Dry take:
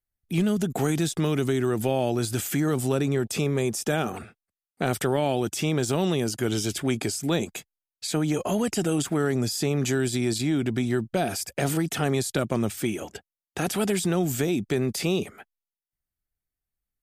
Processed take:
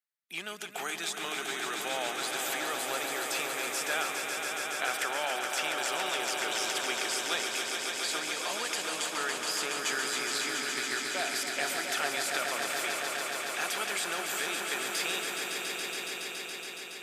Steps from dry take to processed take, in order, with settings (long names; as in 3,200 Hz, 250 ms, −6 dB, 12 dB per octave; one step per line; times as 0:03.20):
high-pass filter 1,300 Hz 12 dB per octave
high-shelf EQ 4,500 Hz −9.5 dB
on a send: echo that builds up and dies away 140 ms, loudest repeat 5, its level −7 dB
on the sum: level +2.5 dB